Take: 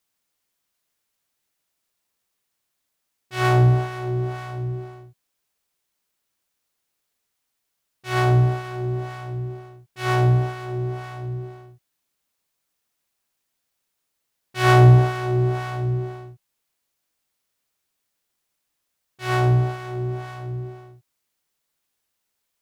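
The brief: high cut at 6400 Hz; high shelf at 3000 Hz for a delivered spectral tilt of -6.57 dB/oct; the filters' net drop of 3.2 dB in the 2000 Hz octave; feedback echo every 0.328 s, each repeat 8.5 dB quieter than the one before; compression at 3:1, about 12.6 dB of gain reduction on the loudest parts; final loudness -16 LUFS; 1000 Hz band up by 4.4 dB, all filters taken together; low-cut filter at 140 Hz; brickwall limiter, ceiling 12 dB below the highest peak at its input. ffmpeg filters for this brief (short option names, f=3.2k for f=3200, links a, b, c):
-af "highpass=140,lowpass=6.4k,equalizer=f=1k:t=o:g=8.5,equalizer=f=2k:t=o:g=-8,highshelf=f=3k:g=-4,acompressor=threshold=-27dB:ratio=3,alimiter=level_in=2.5dB:limit=-24dB:level=0:latency=1,volume=-2.5dB,aecho=1:1:328|656|984|1312:0.376|0.143|0.0543|0.0206,volume=20dB"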